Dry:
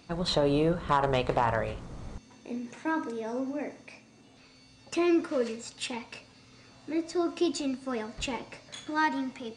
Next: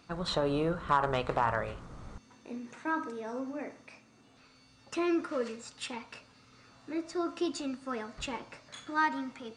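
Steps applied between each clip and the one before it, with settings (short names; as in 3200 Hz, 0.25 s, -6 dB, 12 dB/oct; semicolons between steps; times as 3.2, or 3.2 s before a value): bell 1300 Hz +7.5 dB 0.73 oct; gain -5 dB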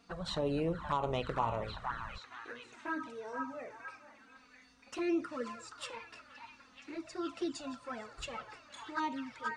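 delay with a stepping band-pass 0.473 s, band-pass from 1200 Hz, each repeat 0.7 oct, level -2.5 dB; envelope flanger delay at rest 4.5 ms, full sweep at -25 dBFS; gain -2 dB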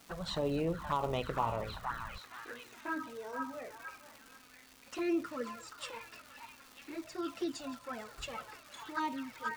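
crackle 600/s -45 dBFS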